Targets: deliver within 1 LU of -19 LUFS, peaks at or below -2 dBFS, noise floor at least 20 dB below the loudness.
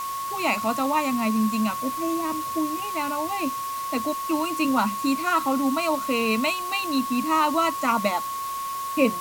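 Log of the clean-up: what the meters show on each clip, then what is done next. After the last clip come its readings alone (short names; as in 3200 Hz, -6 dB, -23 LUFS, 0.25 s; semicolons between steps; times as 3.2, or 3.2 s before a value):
steady tone 1100 Hz; tone level -28 dBFS; noise floor -31 dBFS; noise floor target -45 dBFS; loudness -24.5 LUFS; peak -7.5 dBFS; loudness target -19.0 LUFS
-> notch 1100 Hz, Q 30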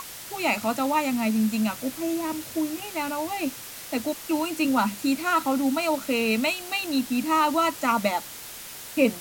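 steady tone none; noise floor -40 dBFS; noise floor target -46 dBFS
-> denoiser 6 dB, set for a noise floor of -40 dBFS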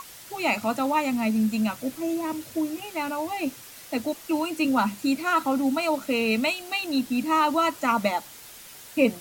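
noise floor -45 dBFS; noise floor target -46 dBFS
-> denoiser 6 dB, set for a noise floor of -45 dBFS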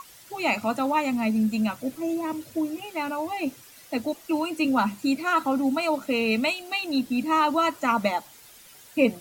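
noise floor -50 dBFS; loudness -26.0 LUFS; peak -8.0 dBFS; loudness target -19.0 LUFS
-> gain +7 dB; limiter -2 dBFS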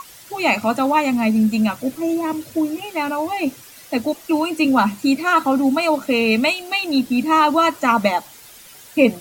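loudness -19.0 LUFS; peak -2.0 dBFS; noise floor -43 dBFS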